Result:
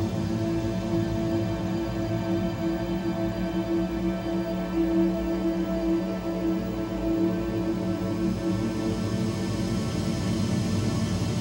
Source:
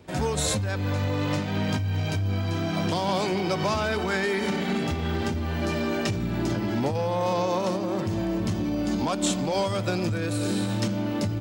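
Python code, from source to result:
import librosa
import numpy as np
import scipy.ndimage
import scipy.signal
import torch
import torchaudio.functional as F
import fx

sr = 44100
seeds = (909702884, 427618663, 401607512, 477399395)

y = fx.quant_float(x, sr, bits=6)
y = fx.paulstretch(y, sr, seeds[0], factor=31.0, window_s=0.25, from_s=8.14)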